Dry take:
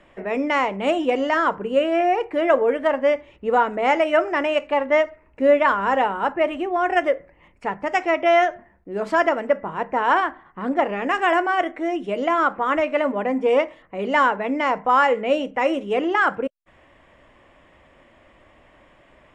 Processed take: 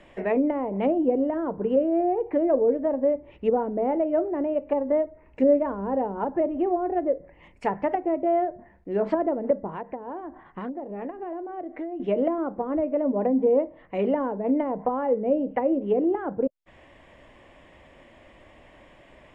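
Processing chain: treble ducked by the level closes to 440 Hz, closed at -18.5 dBFS; 9.66–12 compressor, threshold -33 dBFS, peak gain reduction 13 dB; bell 1300 Hz -6 dB 0.58 oct; gain +2 dB

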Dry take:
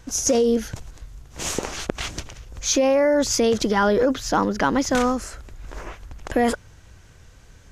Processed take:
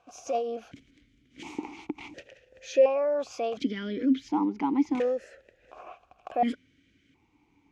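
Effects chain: vowel sequencer 1.4 Hz; gain +2.5 dB

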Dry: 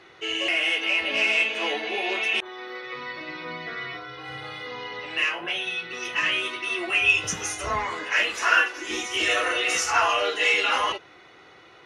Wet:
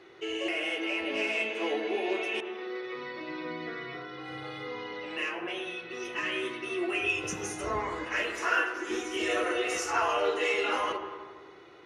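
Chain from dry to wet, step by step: bell 370 Hz +8.5 dB 1.1 oct; reverb RT60 1.5 s, pre-delay 86 ms, DRR 8 dB; dynamic EQ 3600 Hz, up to -5 dB, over -36 dBFS, Q 0.73; gain -6.5 dB

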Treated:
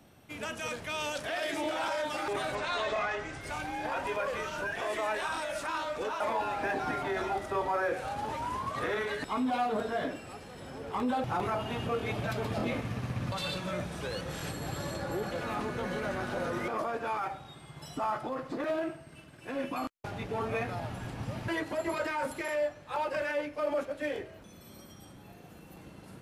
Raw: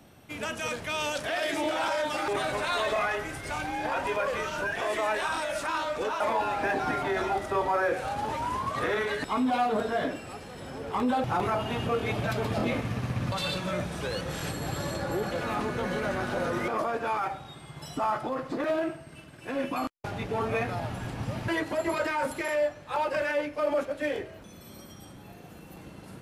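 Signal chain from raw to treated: 2.55–3.41 LPF 7400 Hz 24 dB/oct; gain -4 dB

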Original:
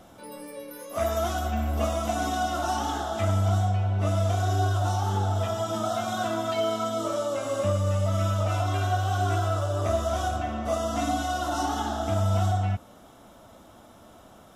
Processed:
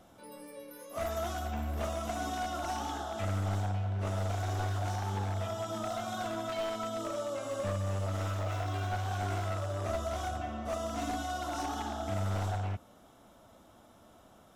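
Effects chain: one-sided fold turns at -22.5 dBFS; 8.39–8.96 decimation joined by straight lines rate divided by 2×; gain -7.5 dB

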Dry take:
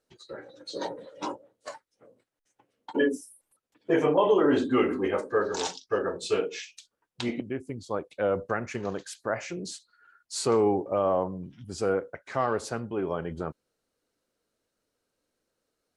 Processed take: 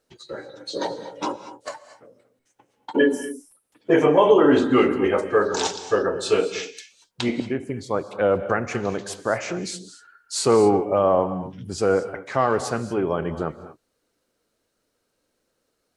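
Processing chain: non-linear reverb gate 0.26 s rising, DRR 12 dB; gain +6.5 dB

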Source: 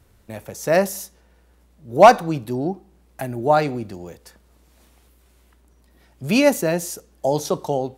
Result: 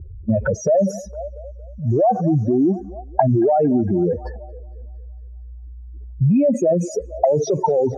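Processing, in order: spectral contrast raised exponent 3.7; compressor 2.5:1, threshold -32 dBFS, peak gain reduction 17 dB; on a send: thinning echo 0.229 s, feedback 83%, high-pass 840 Hz, level -20 dB; on the sum: maximiser +30.5 dB; envelope low-pass 360–2500 Hz up, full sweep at -5.5 dBFS; gain -10 dB

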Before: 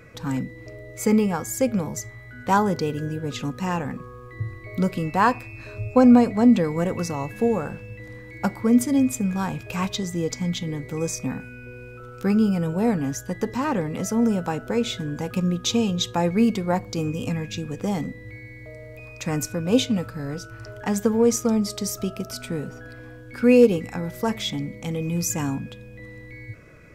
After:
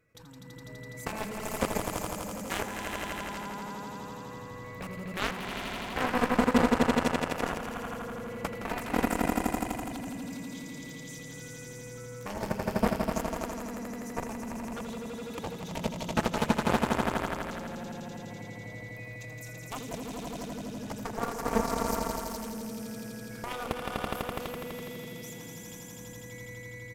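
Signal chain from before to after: de-hum 116.6 Hz, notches 2; level quantiser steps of 21 dB; high shelf 8500 Hz +11 dB; on a send: swelling echo 83 ms, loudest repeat 5, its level -3.5 dB; on the sum: added harmonics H 7 -12 dB, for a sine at -5 dBFS; speakerphone echo 80 ms, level -14 dB; gain -6.5 dB

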